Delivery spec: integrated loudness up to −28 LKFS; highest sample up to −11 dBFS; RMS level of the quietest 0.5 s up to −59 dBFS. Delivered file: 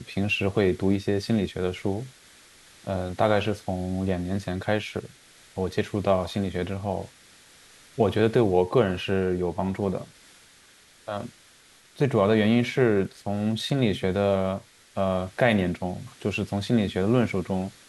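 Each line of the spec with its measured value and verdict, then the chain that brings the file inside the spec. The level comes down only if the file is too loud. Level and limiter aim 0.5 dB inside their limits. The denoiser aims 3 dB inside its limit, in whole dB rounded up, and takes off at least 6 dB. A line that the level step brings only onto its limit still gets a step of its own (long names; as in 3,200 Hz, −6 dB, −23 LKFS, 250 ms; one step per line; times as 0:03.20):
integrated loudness −26.0 LKFS: out of spec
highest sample −7.0 dBFS: out of spec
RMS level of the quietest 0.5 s −55 dBFS: out of spec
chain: broadband denoise 6 dB, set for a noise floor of −55 dBFS
level −2.5 dB
brickwall limiter −11.5 dBFS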